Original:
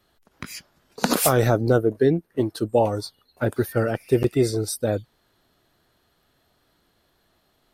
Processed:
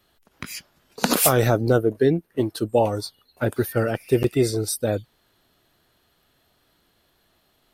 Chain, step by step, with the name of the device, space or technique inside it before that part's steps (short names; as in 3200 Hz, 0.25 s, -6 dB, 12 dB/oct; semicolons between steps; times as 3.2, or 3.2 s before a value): presence and air boost (bell 2800 Hz +3.5 dB 0.81 oct; high shelf 9100 Hz +5.5 dB)